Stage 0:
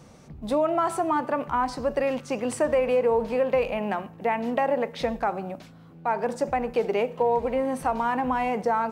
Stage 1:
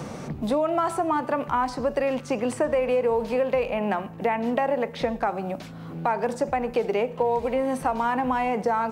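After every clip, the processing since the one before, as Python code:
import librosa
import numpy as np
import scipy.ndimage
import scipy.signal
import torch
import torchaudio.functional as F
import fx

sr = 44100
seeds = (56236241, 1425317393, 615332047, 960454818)

y = fx.band_squash(x, sr, depth_pct=70)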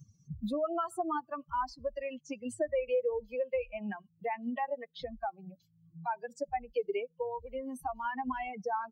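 y = fx.bin_expand(x, sr, power=3.0)
y = y * librosa.db_to_amplitude(-4.0)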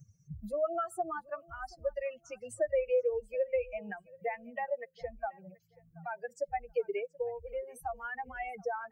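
y = fx.fixed_phaser(x, sr, hz=1000.0, stages=6)
y = fx.echo_feedback(y, sr, ms=730, feedback_pct=20, wet_db=-23)
y = y * librosa.db_to_amplitude(2.0)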